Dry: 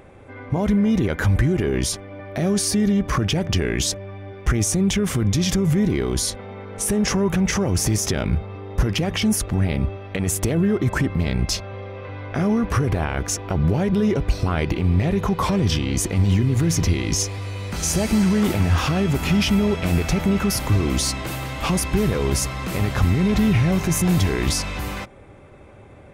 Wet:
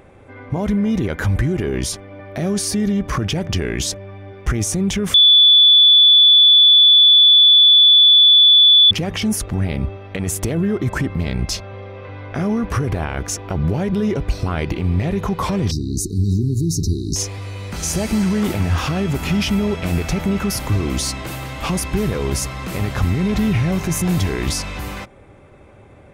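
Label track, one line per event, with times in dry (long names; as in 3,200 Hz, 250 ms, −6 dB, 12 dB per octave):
5.140000	8.910000	beep over 3,460 Hz −6.5 dBFS
15.710000	17.160000	linear-phase brick-wall band-stop 440–3,700 Hz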